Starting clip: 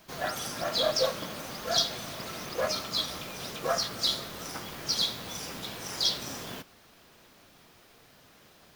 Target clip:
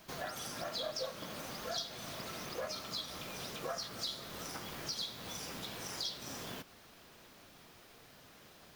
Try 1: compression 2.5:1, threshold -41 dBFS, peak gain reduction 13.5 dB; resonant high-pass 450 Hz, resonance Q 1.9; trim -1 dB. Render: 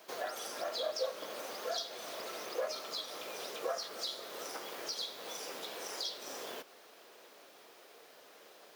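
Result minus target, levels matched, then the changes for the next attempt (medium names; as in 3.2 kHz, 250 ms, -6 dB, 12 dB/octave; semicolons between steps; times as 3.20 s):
500 Hz band +3.5 dB
remove: resonant high-pass 450 Hz, resonance Q 1.9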